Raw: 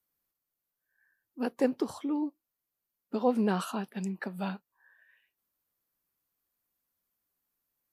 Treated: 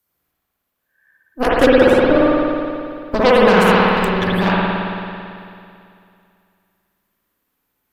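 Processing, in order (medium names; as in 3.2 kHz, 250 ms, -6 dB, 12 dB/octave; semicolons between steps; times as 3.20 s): Chebyshev shaper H 3 -20 dB, 8 -12 dB, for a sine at -14 dBFS; spring tank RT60 2.5 s, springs 55 ms, chirp 55 ms, DRR -7 dB; loudness maximiser +13 dB; trim -1 dB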